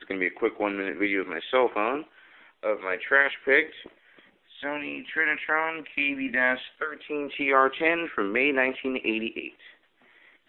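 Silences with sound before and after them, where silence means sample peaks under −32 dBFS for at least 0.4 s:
0:02.01–0:02.63
0:03.86–0:04.63

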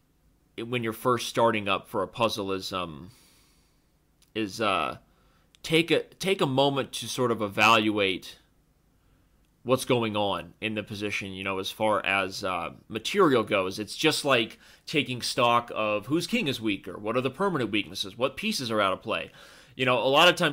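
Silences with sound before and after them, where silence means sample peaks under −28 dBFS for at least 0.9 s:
0:02.85–0:04.36
0:08.16–0:09.68

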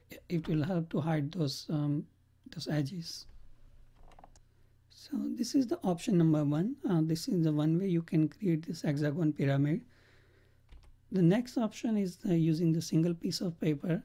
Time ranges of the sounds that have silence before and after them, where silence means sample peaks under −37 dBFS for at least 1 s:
0:05.13–0:09.78

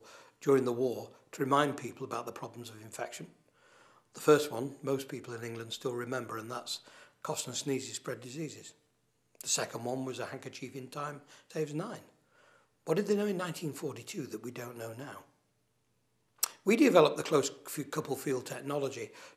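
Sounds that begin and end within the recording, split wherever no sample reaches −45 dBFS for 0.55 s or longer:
0:04.15–0:08.70
0:09.41–0:12.00
0:12.87–0:15.21

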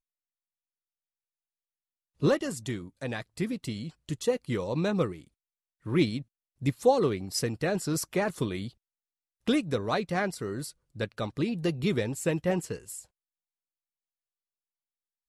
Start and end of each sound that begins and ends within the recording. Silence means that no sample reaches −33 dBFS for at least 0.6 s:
0:02.22–0:05.12
0:05.86–0:08.67
0:09.47–0:12.99

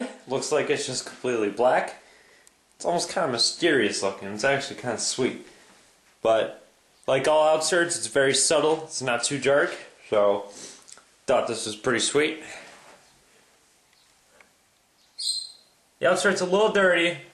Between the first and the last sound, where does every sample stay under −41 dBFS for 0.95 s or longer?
0:12.93–0:14.41

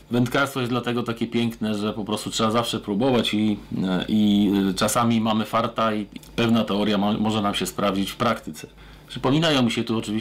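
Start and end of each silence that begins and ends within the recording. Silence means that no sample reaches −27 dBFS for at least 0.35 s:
0:08.64–0:09.12

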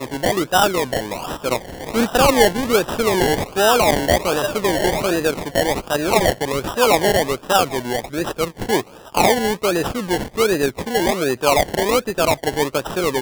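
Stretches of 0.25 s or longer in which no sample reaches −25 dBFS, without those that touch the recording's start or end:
0:08.81–0:09.15

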